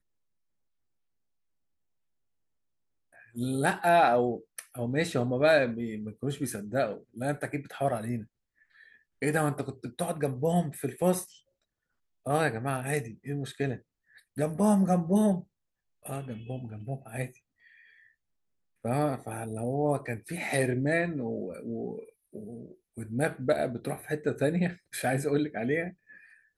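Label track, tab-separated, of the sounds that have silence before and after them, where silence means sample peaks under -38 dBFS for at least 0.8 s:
3.360000	8.230000	sound
9.220000	11.240000	sound
12.260000	17.270000	sound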